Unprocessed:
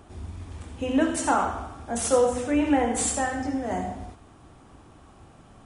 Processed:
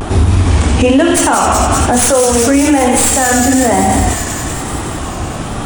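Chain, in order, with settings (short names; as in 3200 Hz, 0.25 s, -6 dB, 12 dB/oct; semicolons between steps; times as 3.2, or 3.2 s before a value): tracing distortion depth 0.031 ms; compressor, threshold -32 dBFS, peak gain reduction 15 dB; thin delay 0.188 s, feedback 74%, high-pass 2400 Hz, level -4 dB; vibrato 1.1 Hz 94 cents; maximiser +31.5 dB; gain -1 dB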